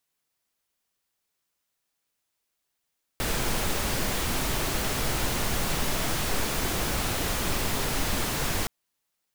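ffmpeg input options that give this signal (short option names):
-f lavfi -i "anoisesrc=c=pink:a=0.229:d=5.47:r=44100:seed=1"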